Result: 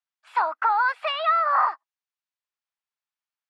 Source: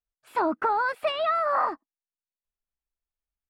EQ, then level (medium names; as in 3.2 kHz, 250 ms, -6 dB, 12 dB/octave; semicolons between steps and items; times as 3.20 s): high-pass 800 Hz 24 dB/octave; distance through air 96 m; +5.5 dB